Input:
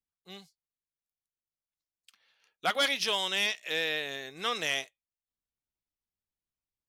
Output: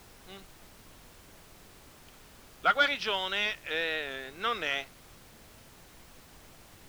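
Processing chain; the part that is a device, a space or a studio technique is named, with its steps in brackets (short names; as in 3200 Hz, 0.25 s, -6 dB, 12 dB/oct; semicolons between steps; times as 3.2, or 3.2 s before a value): horn gramophone (BPF 180–3300 Hz; bell 1400 Hz +10 dB 0.23 oct; wow and flutter; pink noise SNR 18 dB)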